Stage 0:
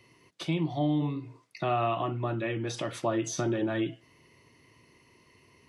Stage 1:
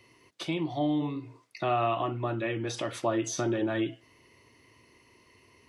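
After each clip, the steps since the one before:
parametric band 160 Hz −8 dB 0.59 octaves
level +1 dB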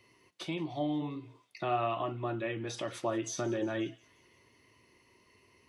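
flanger 1.5 Hz, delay 4.7 ms, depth 1 ms, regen +79%
delay with a high-pass on its return 178 ms, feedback 61%, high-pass 2,300 Hz, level −21.5 dB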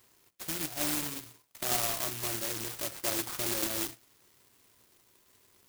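bad sample-rate conversion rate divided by 6×, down none, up zero stuff
converter with an unsteady clock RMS 0.11 ms
level −5.5 dB

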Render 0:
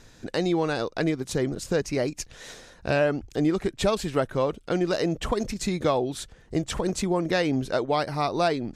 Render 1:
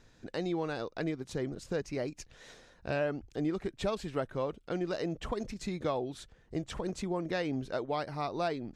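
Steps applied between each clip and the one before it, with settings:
high-shelf EQ 7,700 Hz −11 dB
level −9 dB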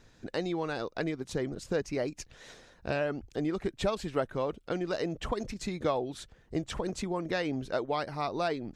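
harmonic and percussive parts rebalanced percussive +4 dB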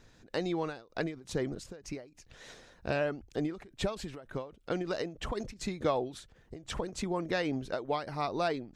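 every ending faded ahead of time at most 140 dB per second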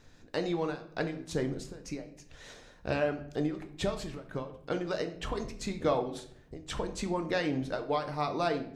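rectangular room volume 110 cubic metres, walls mixed, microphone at 0.42 metres

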